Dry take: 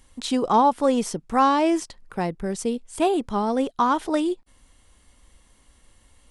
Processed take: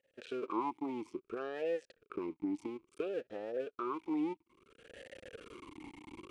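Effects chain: cycle switcher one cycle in 2, muted; recorder AGC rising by 38 dB/s; vowel sweep e-u 0.59 Hz; gain -4 dB

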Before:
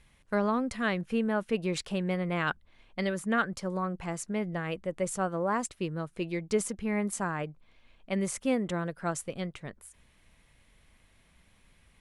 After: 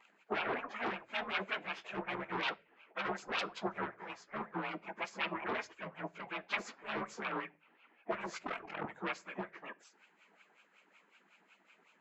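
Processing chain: inharmonic rescaling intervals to 90%; elliptic high-pass 180 Hz, stop band 40 dB; bell 5600 Hz -8 dB 0.24 oct; 1.11–1.8 comb 6.9 ms, depth 41%; dynamic EQ 3900 Hz, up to -5 dB, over -59 dBFS, Q 1.7; sine folder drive 14 dB, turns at -17.5 dBFS; wah 5.4 Hz 530–2100 Hz, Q 16; 8.43–8.85 ring modulator 21 Hz; spectral gate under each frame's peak -15 dB weak; reverb RT60 0.35 s, pre-delay 3 ms, DRR 16 dB; gain +14.5 dB

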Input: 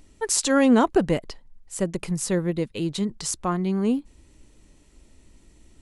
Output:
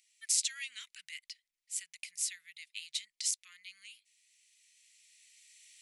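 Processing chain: recorder AGC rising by 7.1 dB/s; elliptic high-pass 2100 Hz, stop band 60 dB; gain -6 dB

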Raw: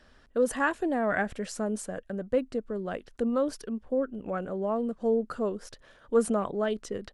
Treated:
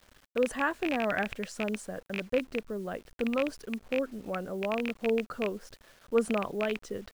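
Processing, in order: rattling part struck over -36 dBFS, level -17 dBFS; high shelf 10000 Hz -10 dB; bit-crush 9-bit; gain -2.5 dB

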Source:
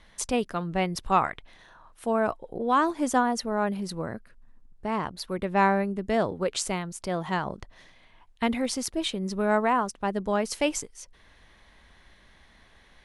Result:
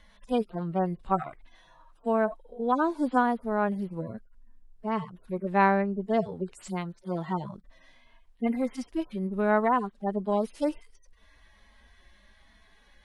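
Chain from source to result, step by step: median-filter separation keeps harmonic; 5.62–6.03 LPF 6100 Hz 12 dB/oct

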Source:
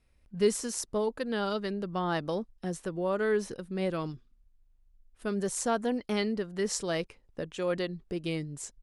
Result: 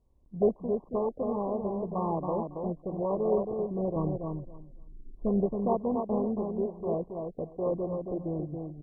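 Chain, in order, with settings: 3.96–5.46 tilt -2.5 dB/oct; feedback echo 0.275 s, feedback 18%, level -5 dB; MP2 8 kbps 24000 Hz

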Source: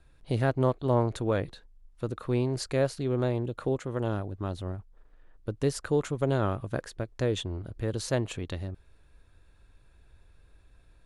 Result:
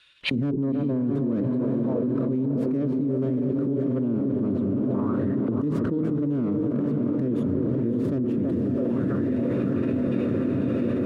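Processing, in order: tracing distortion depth 0.38 ms; dynamic EQ 8900 Hz, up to +4 dB, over -59 dBFS, Q 1.8; narrowing echo 0.327 s, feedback 64%, band-pass 640 Hz, level -7 dB; gate with hold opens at -44 dBFS; bell 720 Hz -11 dB 0.39 oct; notches 50/100/150/200/250/300/350/400/450 Hz; formant-preserving pitch shift +1 st; auto-wah 240–3200 Hz, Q 3.8, down, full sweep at -33.5 dBFS; diffused feedback echo 0.591 s, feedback 58%, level -6.5 dB; fast leveller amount 100%; gain +5.5 dB

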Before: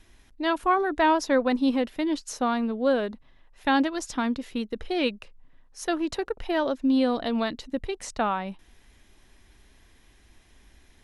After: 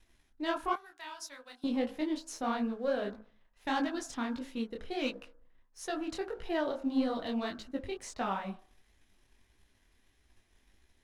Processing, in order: de-hum 53.64 Hz, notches 32; 0.73–1.64 differentiator; sample leveller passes 1; detuned doubles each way 54 cents; gain -7 dB

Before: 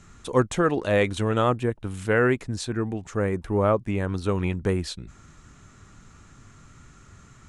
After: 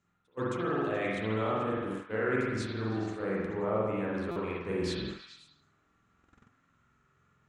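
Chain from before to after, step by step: reverse; compressor 8:1, threshold -35 dBFS, peak gain reduction 20 dB; reverse; spring tank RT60 1.3 s, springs 46 ms, chirp 40 ms, DRR -5.5 dB; gate -36 dBFS, range -24 dB; HPF 190 Hz 6 dB/oct; high shelf 6300 Hz -11.5 dB; on a send: delay with a stepping band-pass 0.107 s, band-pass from 1200 Hz, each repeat 0.7 oct, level -5.5 dB; on the sum: stuck buffer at 4.31, samples 256, times 8; gain +2 dB

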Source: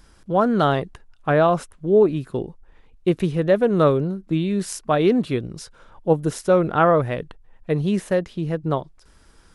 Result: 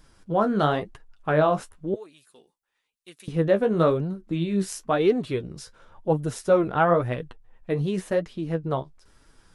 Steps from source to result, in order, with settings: 1.94–3.28 differentiator; flange 0.97 Hz, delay 6.1 ms, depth 9.9 ms, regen +33%

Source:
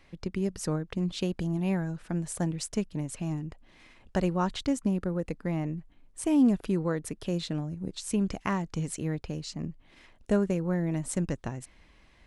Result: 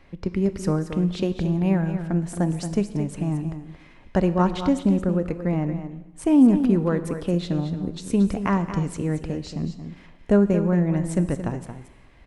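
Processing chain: high shelf 2800 Hz -11 dB; on a send: echo 0.226 s -10 dB; on the sum: non-linear reverb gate 0.42 s falling, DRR 11.5 dB; gain +7 dB

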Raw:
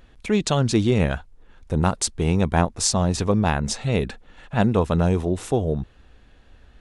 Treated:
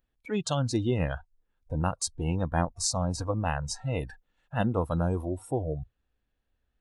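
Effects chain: 3.99–5.26 high shelf 3600 Hz -> 5200 Hz +6.5 dB; spectral noise reduction 20 dB; gain -7 dB

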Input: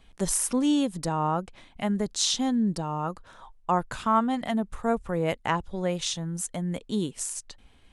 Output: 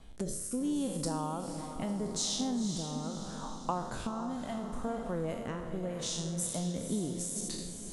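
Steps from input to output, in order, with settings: spectral trails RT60 0.64 s; bell 2400 Hz -8.5 dB 1.4 oct; compressor 6:1, threshold -37 dBFS, peak gain reduction 17 dB; rotary speaker horn 0.75 Hz; on a send: diffused feedback echo 0.492 s, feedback 50%, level -8 dB; on the sum: gain +5.5 dB

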